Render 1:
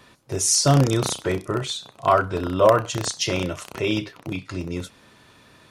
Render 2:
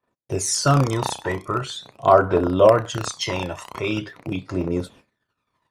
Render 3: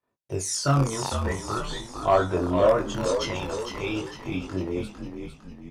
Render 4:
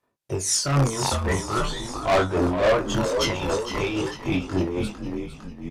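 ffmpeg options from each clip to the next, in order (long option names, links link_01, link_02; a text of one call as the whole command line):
ffmpeg -i in.wav -af "agate=range=-39dB:threshold=-48dB:ratio=16:detection=peak,aphaser=in_gain=1:out_gain=1:delay=1.2:decay=0.6:speed=0.43:type=triangular,equalizer=frequency=750:width_type=o:width=2.9:gain=10,volume=-6.5dB" out.wav
ffmpeg -i in.wav -filter_complex "[0:a]flanger=delay=19.5:depth=2.5:speed=0.59,asoftclip=type=tanh:threshold=-6.5dB,asplit=7[link_01][link_02][link_03][link_04][link_05][link_06][link_07];[link_02]adelay=454,afreqshift=-56,volume=-7dB[link_08];[link_03]adelay=908,afreqshift=-112,volume=-13.4dB[link_09];[link_04]adelay=1362,afreqshift=-168,volume=-19.8dB[link_10];[link_05]adelay=1816,afreqshift=-224,volume=-26.1dB[link_11];[link_06]adelay=2270,afreqshift=-280,volume=-32.5dB[link_12];[link_07]adelay=2724,afreqshift=-336,volume=-38.9dB[link_13];[link_01][link_08][link_09][link_10][link_11][link_12][link_13]amix=inputs=7:normalize=0,volume=-2.5dB" out.wav
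ffmpeg -i in.wav -af "asoftclip=type=tanh:threshold=-24dB,tremolo=f=3.7:d=0.55,aresample=32000,aresample=44100,volume=9dB" out.wav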